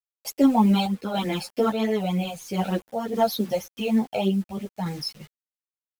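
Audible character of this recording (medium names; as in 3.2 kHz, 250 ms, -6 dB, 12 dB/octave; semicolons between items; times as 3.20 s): phasing stages 12, 3.3 Hz, lowest notch 320–1300 Hz; a quantiser's noise floor 8-bit, dither none; random-step tremolo; a shimmering, thickened sound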